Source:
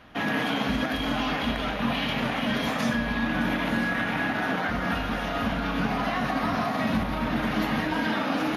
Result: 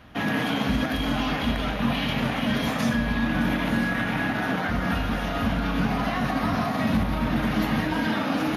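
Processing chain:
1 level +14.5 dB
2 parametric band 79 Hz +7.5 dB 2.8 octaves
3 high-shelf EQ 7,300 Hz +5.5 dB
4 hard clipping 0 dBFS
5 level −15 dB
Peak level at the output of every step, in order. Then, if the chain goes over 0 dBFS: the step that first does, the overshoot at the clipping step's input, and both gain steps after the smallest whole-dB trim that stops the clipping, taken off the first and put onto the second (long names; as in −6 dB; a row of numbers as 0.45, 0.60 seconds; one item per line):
+2.5, +4.5, +4.5, 0.0, −15.0 dBFS
step 1, 4.5 dB
step 1 +9.5 dB, step 5 −10 dB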